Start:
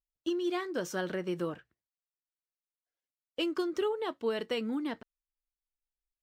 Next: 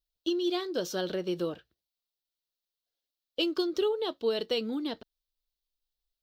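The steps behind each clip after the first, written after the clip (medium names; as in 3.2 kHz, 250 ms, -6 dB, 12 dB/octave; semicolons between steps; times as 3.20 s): ten-band graphic EQ 125 Hz -8 dB, 250 Hz -5 dB, 1 kHz -7 dB, 2 kHz -12 dB, 4 kHz +10 dB, 8 kHz -10 dB; trim +6.5 dB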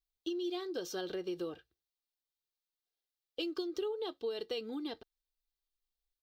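comb 2.5 ms, depth 46%; compression 3:1, threshold -29 dBFS, peak gain reduction 6.5 dB; trim -6 dB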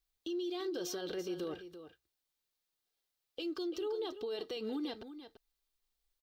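peak limiter -37.5 dBFS, peak gain reduction 11 dB; delay 339 ms -11.5 dB; trim +5.5 dB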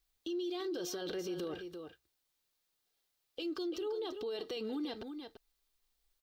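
peak limiter -36.5 dBFS, peak gain reduction 6.5 dB; trim +4.5 dB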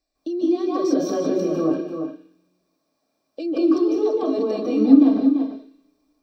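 small resonant body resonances 290/610/1100/2400 Hz, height 15 dB, ringing for 40 ms; reverberation RT60 0.50 s, pre-delay 147 ms, DRR -7 dB; trim -5.5 dB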